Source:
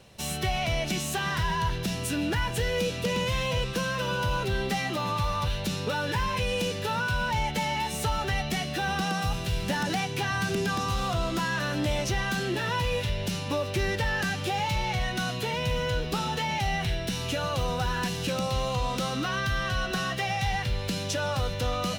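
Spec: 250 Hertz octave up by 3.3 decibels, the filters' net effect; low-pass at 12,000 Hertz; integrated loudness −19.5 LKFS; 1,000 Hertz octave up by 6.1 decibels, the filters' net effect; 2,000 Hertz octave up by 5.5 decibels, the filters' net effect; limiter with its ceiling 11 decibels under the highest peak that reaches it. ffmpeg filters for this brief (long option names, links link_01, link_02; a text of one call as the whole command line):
ffmpeg -i in.wav -af "lowpass=12000,equalizer=frequency=250:width_type=o:gain=4.5,equalizer=frequency=1000:width_type=o:gain=6,equalizer=frequency=2000:width_type=o:gain=5,volume=12.5dB,alimiter=limit=-12dB:level=0:latency=1" out.wav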